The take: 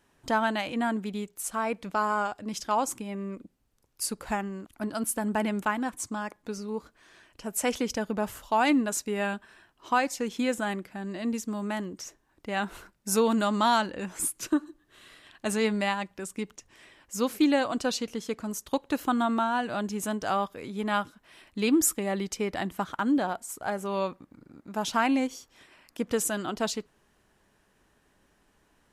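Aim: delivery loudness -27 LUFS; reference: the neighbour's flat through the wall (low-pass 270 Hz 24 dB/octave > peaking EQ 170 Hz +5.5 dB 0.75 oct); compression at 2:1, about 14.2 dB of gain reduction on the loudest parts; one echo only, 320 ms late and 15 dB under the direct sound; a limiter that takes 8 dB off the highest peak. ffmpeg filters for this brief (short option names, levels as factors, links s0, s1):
-af "acompressor=threshold=0.00501:ratio=2,alimiter=level_in=2.66:limit=0.0631:level=0:latency=1,volume=0.376,lowpass=f=270:w=0.5412,lowpass=f=270:w=1.3066,equalizer=f=170:t=o:w=0.75:g=5.5,aecho=1:1:320:0.178,volume=7.5"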